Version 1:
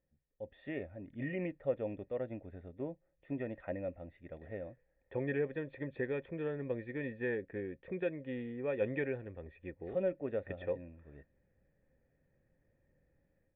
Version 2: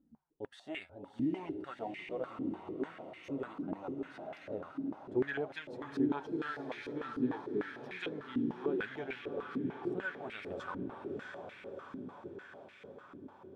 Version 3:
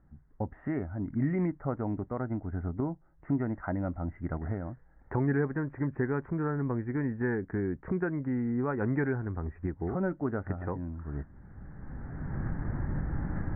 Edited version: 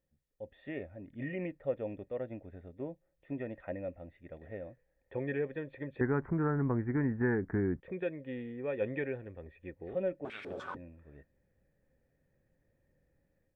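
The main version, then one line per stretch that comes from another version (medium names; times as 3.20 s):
1
6.01–7.80 s: from 3
10.25–10.76 s: from 2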